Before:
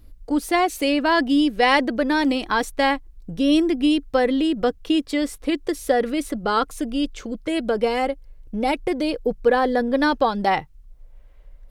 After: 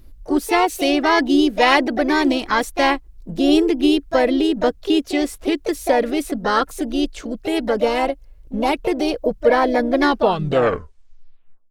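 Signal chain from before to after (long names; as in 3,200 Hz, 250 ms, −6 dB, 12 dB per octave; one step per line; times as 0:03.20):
turntable brake at the end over 1.71 s
pitch-shifted copies added +4 semitones −8 dB, +5 semitones −16 dB
level +2 dB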